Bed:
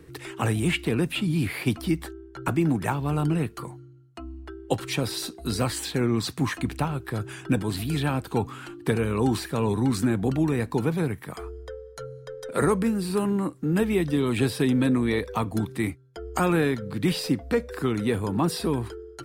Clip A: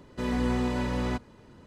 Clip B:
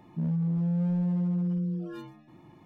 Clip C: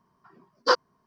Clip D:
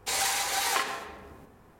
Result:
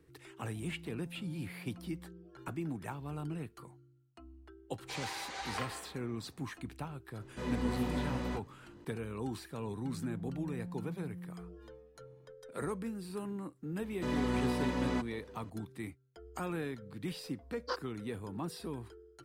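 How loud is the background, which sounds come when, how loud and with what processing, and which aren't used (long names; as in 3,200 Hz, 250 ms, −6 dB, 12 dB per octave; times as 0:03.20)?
bed −15.5 dB
0:00.43: mix in B −17 dB + high-pass filter 340 Hz 6 dB per octave
0:04.82: mix in D −10.5 dB + high-frequency loss of the air 120 metres
0:07.19: mix in A −3.5 dB + micro pitch shift up and down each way 44 cents
0:09.67: mix in B −17 dB
0:13.84: mix in A −4 dB + high-pass filter 89 Hz 6 dB per octave
0:17.01: mix in C −17 dB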